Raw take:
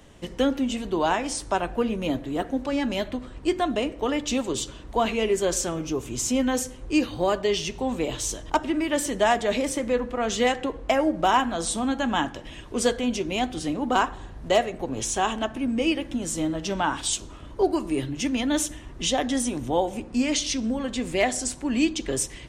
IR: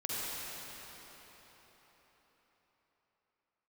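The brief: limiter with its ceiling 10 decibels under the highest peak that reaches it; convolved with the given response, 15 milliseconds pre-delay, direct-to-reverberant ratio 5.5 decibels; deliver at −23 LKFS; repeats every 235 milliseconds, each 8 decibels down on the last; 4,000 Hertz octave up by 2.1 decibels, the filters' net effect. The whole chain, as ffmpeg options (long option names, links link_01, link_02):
-filter_complex "[0:a]equalizer=frequency=4000:width_type=o:gain=3,alimiter=limit=-20dB:level=0:latency=1,aecho=1:1:235|470|705|940|1175:0.398|0.159|0.0637|0.0255|0.0102,asplit=2[link_01][link_02];[1:a]atrim=start_sample=2205,adelay=15[link_03];[link_02][link_03]afir=irnorm=-1:irlink=0,volume=-11dB[link_04];[link_01][link_04]amix=inputs=2:normalize=0,volume=4.5dB"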